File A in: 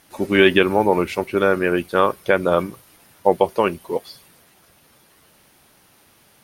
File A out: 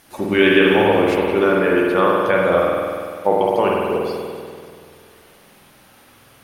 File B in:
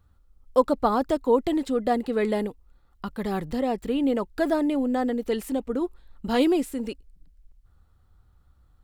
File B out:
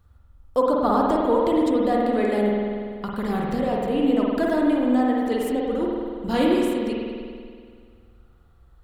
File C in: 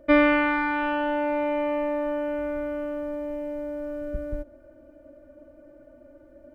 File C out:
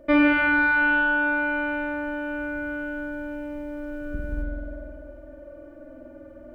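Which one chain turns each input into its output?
in parallel at -1.5 dB: compression, threshold -33 dBFS; on the sum: spring tank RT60 2.1 s, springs 48 ms, chirp 50 ms, DRR -3 dB; trim -3 dB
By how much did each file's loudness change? +2.0 LU, +3.0 LU, +2.0 LU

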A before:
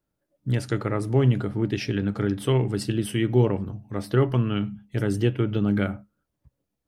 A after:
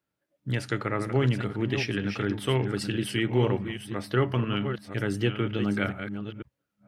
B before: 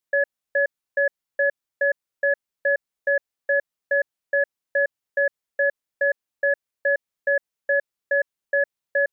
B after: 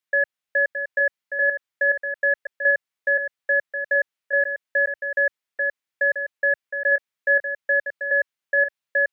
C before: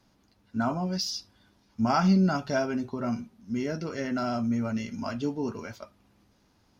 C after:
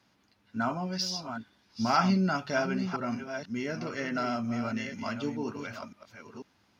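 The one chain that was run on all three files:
chunks repeated in reverse 494 ms, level -8 dB; high-pass 80 Hz; peaking EQ 2.2 kHz +8 dB 2.2 oct; trim -4.5 dB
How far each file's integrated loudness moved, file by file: -3.5 LU, +2.0 LU, -2.5 LU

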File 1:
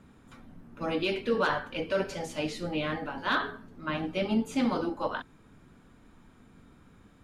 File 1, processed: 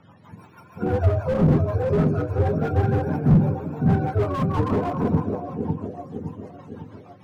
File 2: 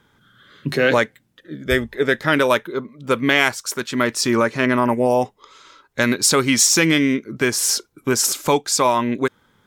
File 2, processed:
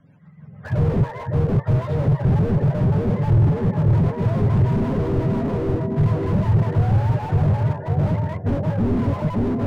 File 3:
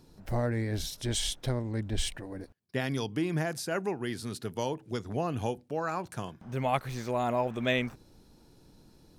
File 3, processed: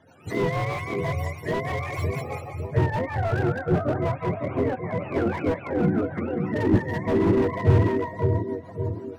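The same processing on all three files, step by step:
spectrum inverted on a logarithmic axis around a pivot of 490 Hz; on a send: two-band feedback delay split 800 Hz, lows 557 ms, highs 198 ms, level -5.5 dB; on the sum: peak limiter -11.5 dBFS; low-pass 1.5 kHz 6 dB/octave; rotary cabinet horn 6.3 Hz; slew-rate limiter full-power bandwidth 12 Hz; peak normalisation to -6 dBFS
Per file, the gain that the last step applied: +12.0 dB, +8.0 dB, +12.0 dB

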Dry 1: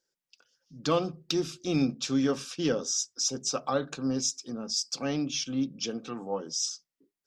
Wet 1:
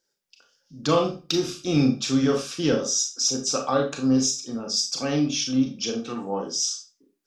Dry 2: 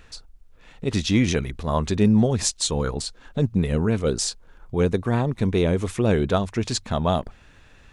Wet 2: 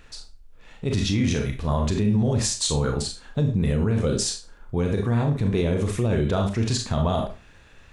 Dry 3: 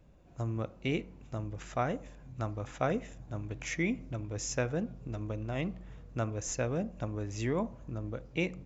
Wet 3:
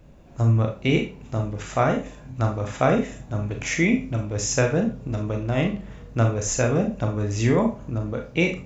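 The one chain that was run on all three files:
dynamic bell 110 Hz, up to +7 dB, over -38 dBFS, Q 1.4; Schroeder reverb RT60 0.3 s, combs from 27 ms, DRR 3 dB; loudness maximiser +11.5 dB; normalise loudness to -24 LUFS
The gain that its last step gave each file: -7.5 dB, -12.5 dB, -2.0 dB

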